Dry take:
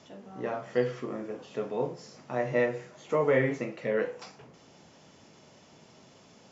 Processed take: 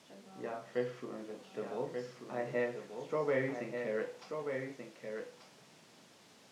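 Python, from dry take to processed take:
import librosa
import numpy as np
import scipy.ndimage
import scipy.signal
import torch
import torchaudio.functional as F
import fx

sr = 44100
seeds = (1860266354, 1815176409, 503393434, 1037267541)

y = fx.dmg_noise_colour(x, sr, seeds[0], colour='white', level_db=-52.0)
y = fx.bandpass_edges(y, sr, low_hz=130.0, high_hz=6100.0)
y = y + 10.0 ** (-6.0 / 20.0) * np.pad(y, (int(1185 * sr / 1000.0), 0))[:len(y)]
y = y * librosa.db_to_amplitude(-8.0)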